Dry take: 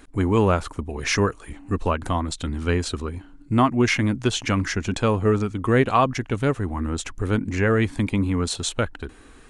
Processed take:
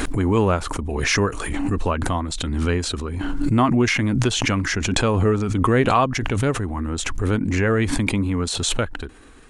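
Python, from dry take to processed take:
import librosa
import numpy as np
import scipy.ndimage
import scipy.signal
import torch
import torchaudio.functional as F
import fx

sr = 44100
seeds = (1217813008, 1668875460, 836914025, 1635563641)

y = fx.pre_swell(x, sr, db_per_s=25.0)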